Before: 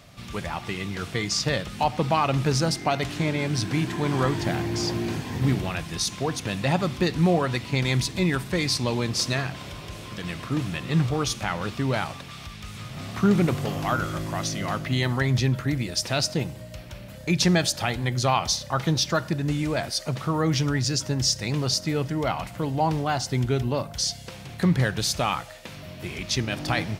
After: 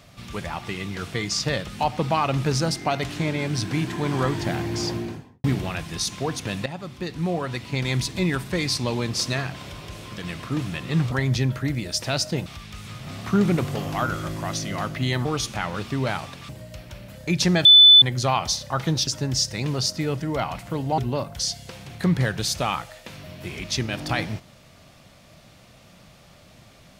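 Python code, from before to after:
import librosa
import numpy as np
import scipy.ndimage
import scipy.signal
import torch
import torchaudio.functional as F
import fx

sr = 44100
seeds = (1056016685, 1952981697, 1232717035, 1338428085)

y = fx.studio_fade_out(x, sr, start_s=4.85, length_s=0.59)
y = fx.edit(y, sr, fx.fade_in_from(start_s=6.66, length_s=1.44, floor_db=-13.5),
    fx.swap(start_s=11.12, length_s=1.24, other_s=15.15, other_length_s=1.34),
    fx.bleep(start_s=17.65, length_s=0.37, hz=3500.0, db=-7.0),
    fx.cut(start_s=19.07, length_s=1.88),
    fx.cut(start_s=22.86, length_s=0.71), tone=tone)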